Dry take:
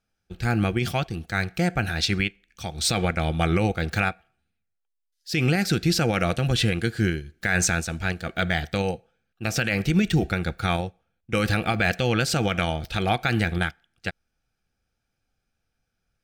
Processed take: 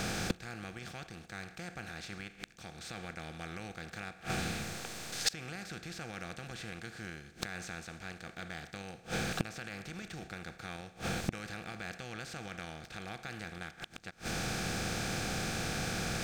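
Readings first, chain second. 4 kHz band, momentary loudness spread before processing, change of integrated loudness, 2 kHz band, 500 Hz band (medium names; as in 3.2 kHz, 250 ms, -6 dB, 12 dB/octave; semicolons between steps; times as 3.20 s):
-11.0 dB, 7 LU, -15.5 dB, -13.0 dB, -16.0 dB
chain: spectral levelling over time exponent 0.4; dynamic bell 1.5 kHz, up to +5 dB, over -31 dBFS, Q 0.73; inverted gate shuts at -19 dBFS, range -31 dB; trim +2.5 dB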